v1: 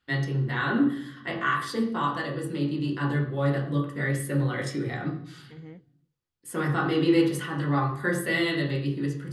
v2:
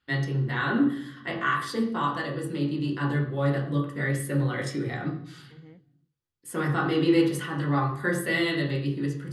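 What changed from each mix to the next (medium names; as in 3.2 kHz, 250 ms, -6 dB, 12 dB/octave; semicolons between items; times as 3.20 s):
second voice -5.5 dB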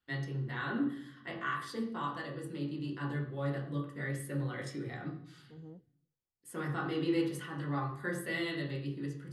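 first voice -10.0 dB; second voice: add Butterworth band-stop 2.6 kHz, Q 0.55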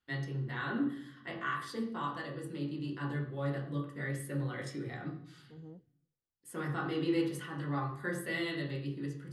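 no change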